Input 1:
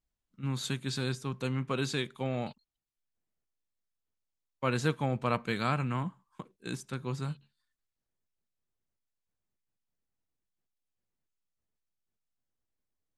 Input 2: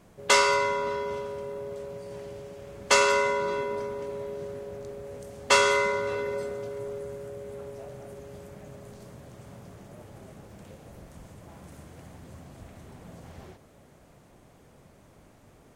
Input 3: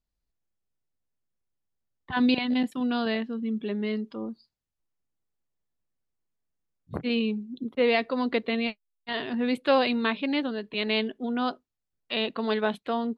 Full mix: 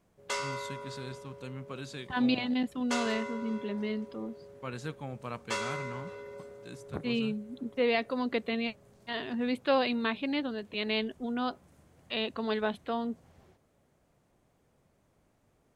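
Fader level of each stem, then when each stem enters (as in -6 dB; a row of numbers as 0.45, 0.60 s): -9.5, -14.0, -4.5 dB; 0.00, 0.00, 0.00 s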